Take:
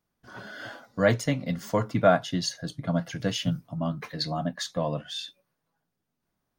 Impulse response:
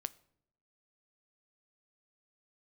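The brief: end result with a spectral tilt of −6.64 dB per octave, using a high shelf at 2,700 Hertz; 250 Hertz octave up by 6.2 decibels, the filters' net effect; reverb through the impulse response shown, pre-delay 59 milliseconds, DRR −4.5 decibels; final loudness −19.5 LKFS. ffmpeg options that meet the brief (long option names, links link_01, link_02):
-filter_complex "[0:a]equalizer=frequency=250:width_type=o:gain=8.5,highshelf=frequency=2700:gain=-7,asplit=2[link_01][link_02];[1:a]atrim=start_sample=2205,adelay=59[link_03];[link_02][link_03]afir=irnorm=-1:irlink=0,volume=6.5dB[link_04];[link_01][link_04]amix=inputs=2:normalize=0,volume=-0.5dB"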